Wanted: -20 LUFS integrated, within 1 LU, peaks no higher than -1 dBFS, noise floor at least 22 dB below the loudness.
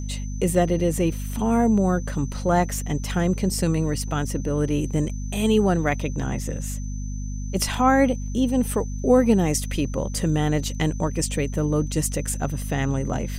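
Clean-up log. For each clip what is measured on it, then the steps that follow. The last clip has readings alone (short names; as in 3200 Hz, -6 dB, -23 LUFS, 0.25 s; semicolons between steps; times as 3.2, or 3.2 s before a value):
hum 50 Hz; harmonics up to 250 Hz; hum level -27 dBFS; steady tone 6100 Hz; tone level -44 dBFS; loudness -23.5 LUFS; peak -6.0 dBFS; loudness target -20.0 LUFS
-> notches 50/100/150/200/250 Hz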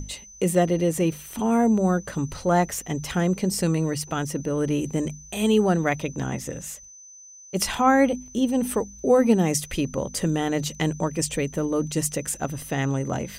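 hum none; steady tone 6100 Hz; tone level -44 dBFS
-> notch 6100 Hz, Q 30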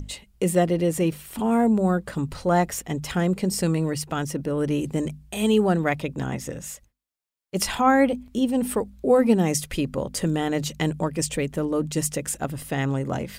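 steady tone none; loudness -24.0 LUFS; peak -7.0 dBFS; loudness target -20.0 LUFS
-> gain +4 dB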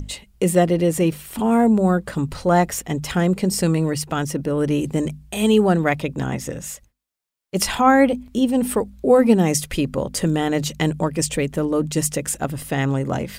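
loudness -20.0 LUFS; peak -3.0 dBFS; noise floor -57 dBFS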